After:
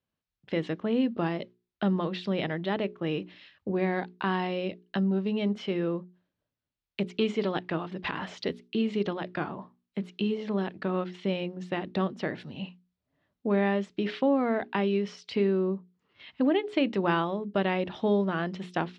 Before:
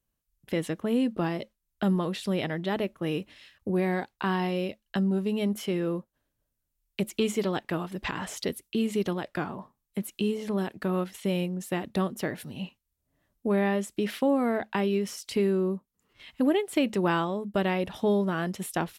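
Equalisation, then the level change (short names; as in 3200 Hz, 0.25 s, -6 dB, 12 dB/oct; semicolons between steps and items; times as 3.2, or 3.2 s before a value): HPF 100 Hz; LPF 4500 Hz 24 dB/oct; notches 60/120/180/240/300/360/420 Hz; 0.0 dB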